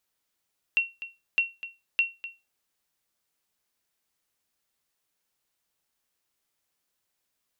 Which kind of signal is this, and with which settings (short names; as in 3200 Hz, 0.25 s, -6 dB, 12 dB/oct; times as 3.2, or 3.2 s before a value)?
sonar ping 2730 Hz, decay 0.24 s, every 0.61 s, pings 3, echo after 0.25 s, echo -14.5 dB -15 dBFS